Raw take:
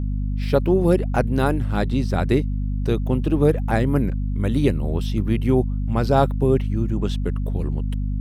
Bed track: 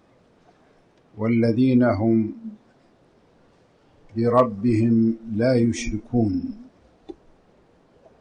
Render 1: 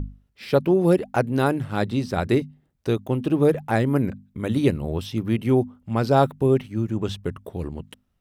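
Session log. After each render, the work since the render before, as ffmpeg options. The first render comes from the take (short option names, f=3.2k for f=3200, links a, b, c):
-af "bandreject=f=50:t=h:w=6,bandreject=f=100:t=h:w=6,bandreject=f=150:t=h:w=6,bandreject=f=200:t=h:w=6,bandreject=f=250:t=h:w=6"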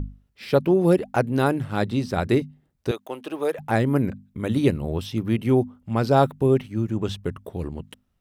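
-filter_complex "[0:a]asettb=1/sr,asplit=3[a][b][c];[a]atrim=end=2.914[d];[b]atrim=start=2.91:end=3.59,asetpts=PTS-STARTPTS,afade=t=in:d=0.004:c=qsin,afade=t=out:st=0.676:d=0.004:c=qsin,highpass=580[e];[c]atrim=start=3.586[f];[d][e]acrossfade=d=0.004:c1=hsin:c2=qsin[g];[g][f]acrossfade=d=0.004:c1=qsin:c2=hsin"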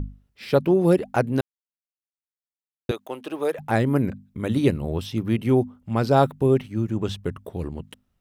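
-filter_complex "[0:a]asplit=3[a][b][c];[a]atrim=end=1.41,asetpts=PTS-STARTPTS,afade=t=out:st=1.406:d=0.004:c=hsin[d];[b]atrim=start=1.41:end=2.89,asetpts=PTS-STARTPTS,volume=0[e];[c]atrim=start=2.89,asetpts=PTS-STARTPTS,afade=t=in:d=0.004:c=hsin[f];[d][e][f]concat=n=3:v=0:a=1"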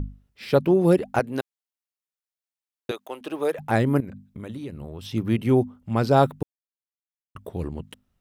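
-filter_complex "[0:a]asettb=1/sr,asplit=3[a][b][c];[a]atrim=end=1.194[d];[b]atrim=start=1.19:end=3.21,asetpts=PTS-STARTPTS,afade=t=in:d=0.004:c=qsin,afade=t=out:st=2.016:d=0.004:c=qsin,highpass=f=420:p=1[e];[c]atrim=start=3.206[f];[d][e]acrossfade=d=0.004:c1=hsin:c2=qsin[g];[g][f]acrossfade=d=0.004:c1=qsin:c2=hsin,asettb=1/sr,asplit=3[h][i][j];[h]atrim=end=4.004[k];[i]atrim=start=4:end=5.13,asetpts=PTS-STARTPTS,afade=t=in:d=0.004:c=qsin,afade=t=out:st=1.126:d=0.004:c=qsin,acompressor=threshold=-33dB:ratio=5:attack=3.2:release=140:knee=1:detection=peak[l];[j]atrim=start=5.126[m];[k][l]acrossfade=d=0.004:c1=hsin:c2=qsin[n];[n][m]acrossfade=d=0.004:c1=qsin:c2=hsin,asplit=3[o][p][q];[o]atrim=end=6.43,asetpts=PTS-STARTPTS,afade=t=out:st=6.426:d=0.004:c=hsin[r];[p]atrim=start=6.43:end=7.35,asetpts=PTS-STARTPTS,volume=0[s];[q]atrim=start=7.35,asetpts=PTS-STARTPTS,afade=t=in:d=0.004:c=hsin[t];[r][s][t]concat=n=3:v=0:a=1"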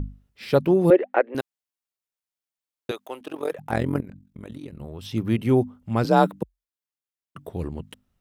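-filter_complex "[0:a]asettb=1/sr,asplit=3[a][b][c];[a]atrim=end=0.904[d];[b]atrim=start=0.9:end=1.35,asetpts=PTS-STARTPTS,afade=t=in:d=0.004:c=qsin,afade=t=out:st=0.446:d=0.004:c=qsin,highpass=f=340:w=0.5412,highpass=f=340:w=1.3066,equalizer=f=340:t=q:w=4:g=5,equalizer=f=540:t=q:w=4:g=7,equalizer=f=1.9k:t=q:w=4:g=7,lowpass=f=2.8k:w=0.5412,lowpass=f=2.8k:w=1.3066[e];[c]atrim=start=1.346[f];[d][e]acrossfade=d=0.004:c1=hsin:c2=qsin[g];[g][f]acrossfade=d=0.004:c1=qsin:c2=hsin,asplit=3[h][i][j];[h]afade=t=out:st=3.21:d=0.02[k];[i]tremolo=f=44:d=0.857,afade=t=in:st=3.21:d=0.02,afade=t=out:st=4.79:d=0.02[l];[j]afade=t=in:st=4.79:d=0.02[m];[k][l][m]amix=inputs=3:normalize=0,asettb=1/sr,asplit=3[n][o][p];[n]atrim=end=6.044[q];[o]atrim=start=6.04:end=7.47,asetpts=PTS-STARTPTS,afade=t=in:d=0.004:c=qsin,afade=t=out:st=1.426:d=0.004:c=qsin,afreqshift=44[r];[p]atrim=start=7.466[s];[q][r]acrossfade=d=0.004:c1=hsin:c2=qsin[t];[t][s]acrossfade=d=0.004:c1=qsin:c2=hsin"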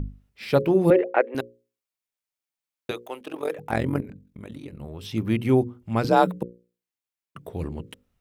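-af "equalizer=f=2.3k:t=o:w=0.34:g=3.5,bandreject=f=60:t=h:w=6,bandreject=f=120:t=h:w=6,bandreject=f=180:t=h:w=6,bandreject=f=240:t=h:w=6,bandreject=f=300:t=h:w=6,bandreject=f=360:t=h:w=6,bandreject=f=420:t=h:w=6,bandreject=f=480:t=h:w=6,bandreject=f=540:t=h:w=6"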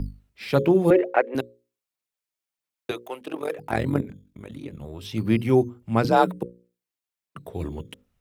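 -filter_complex "[0:a]acrossover=split=120[a][b];[a]acrusher=samples=9:mix=1:aa=0.000001:lfo=1:lforange=9:lforate=0.28[c];[b]aphaser=in_gain=1:out_gain=1:delay=3.2:decay=0.31:speed=1.5:type=sinusoidal[d];[c][d]amix=inputs=2:normalize=0"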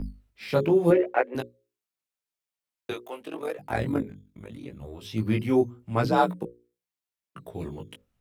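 -af "flanger=delay=15.5:depth=4:speed=0.83"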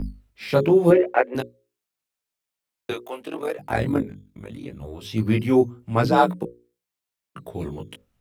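-af "volume=4.5dB"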